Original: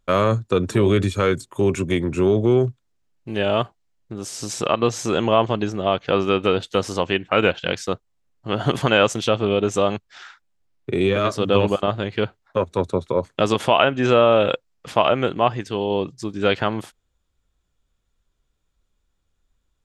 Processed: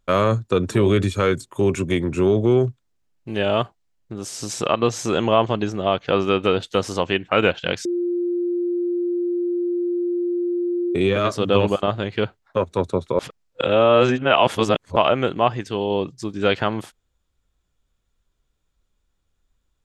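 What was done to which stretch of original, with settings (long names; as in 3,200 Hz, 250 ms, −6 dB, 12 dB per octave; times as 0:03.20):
0:07.85–0:10.95: beep over 350 Hz −19.5 dBFS
0:13.19–0:14.96: reverse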